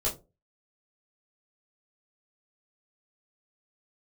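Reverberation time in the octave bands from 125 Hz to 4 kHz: 0.40, 0.35, 0.35, 0.25, 0.15, 0.15 seconds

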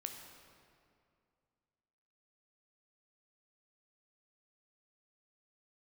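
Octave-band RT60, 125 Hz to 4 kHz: 2.7, 2.6, 2.4, 2.3, 1.9, 1.6 seconds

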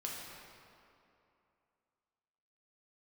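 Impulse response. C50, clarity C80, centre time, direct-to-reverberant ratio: −0.5 dB, 1.0 dB, 128 ms, −3.5 dB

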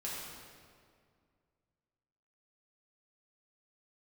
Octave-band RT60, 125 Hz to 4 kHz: 2.7, 2.5, 2.2, 2.0, 1.7, 1.5 seconds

